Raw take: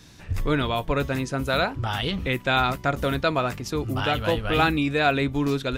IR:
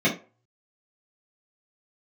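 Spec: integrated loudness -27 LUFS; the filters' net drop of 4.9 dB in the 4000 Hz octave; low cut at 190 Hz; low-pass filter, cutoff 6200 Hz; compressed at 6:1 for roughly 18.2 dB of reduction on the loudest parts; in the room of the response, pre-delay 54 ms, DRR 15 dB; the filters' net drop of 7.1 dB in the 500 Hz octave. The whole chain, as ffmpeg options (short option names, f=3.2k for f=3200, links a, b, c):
-filter_complex "[0:a]highpass=190,lowpass=6.2k,equalizer=f=500:t=o:g=-9,equalizer=f=4k:t=o:g=-5.5,acompressor=threshold=-40dB:ratio=6,asplit=2[a][b];[1:a]atrim=start_sample=2205,adelay=54[c];[b][c]afir=irnorm=-1:irlink=0,volume=-31dB[d];[a][d]amix=inputs=2:normalize=0,volume=15.5dB"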